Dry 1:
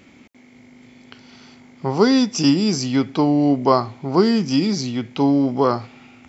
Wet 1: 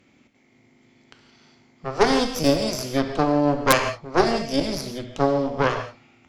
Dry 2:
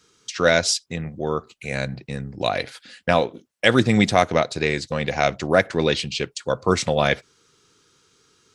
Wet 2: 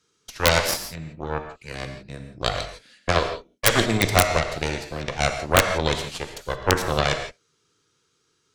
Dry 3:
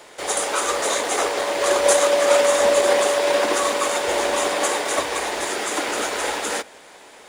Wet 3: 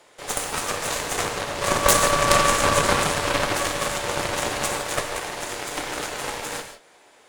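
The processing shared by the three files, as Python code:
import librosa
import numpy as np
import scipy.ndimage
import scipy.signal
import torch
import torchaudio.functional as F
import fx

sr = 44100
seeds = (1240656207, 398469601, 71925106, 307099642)

y = fx.cheby_harmonics(x, sr, harmonics=(3, 4, 7, 8), levels_db=(-13, -13, -37, -42), full_scale_db=-1.0)
y = fx.rev_gated(y, sr, seeds[0], gate_ms=190, shape='flat', drr_db=5.5)
y = (np.mod(10.0 ** (4.0 / 20.0) * y + 1.0, 2.0) - 1.0) / 10.0 ** (4.0 / 20.0)
y = y * 10.0 ** (3.0 / 20.0)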